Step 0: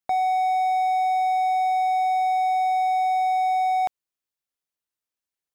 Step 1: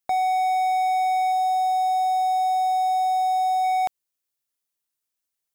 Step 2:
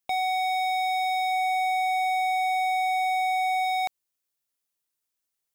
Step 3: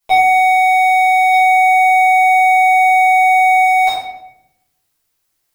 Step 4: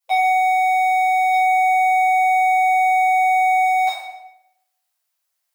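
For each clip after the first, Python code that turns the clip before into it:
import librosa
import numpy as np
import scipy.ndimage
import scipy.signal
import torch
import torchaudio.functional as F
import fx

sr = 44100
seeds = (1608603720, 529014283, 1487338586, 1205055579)

y1 = fx.spec_box(x, sr, start_s=1.32, length_s=2.32, low_hz=980.0, high_hz=3200.0, gain_db=-11)
y1 = fx.high_shelf(y1, sr, hz=5000.0, db=8.5)
y2 = 10.0 ** (-21.5 / 20.0) * (np.abs((y1 / 10.0 ** (-21.5 / 20.0) + 3.0) % 4.0 - 2.0) - 1.0)
y3 = fx.room_shoebox(y2, sr, seeds[0], volume_m3=230.0, walls='mixed', distance_m=4.9)
y3 = y3 * 10.0 ** (3.0 / 20.0)
y4 = fx.brickwall_highpass(y3, sr, low_hz=520.0)
y4 = fx.echo_feedback(y4, sr, ms=115, feedback_pct=28, wet_db=-12.5)
y4 = y4 * 10.0 ** (-7.0 / 20.0)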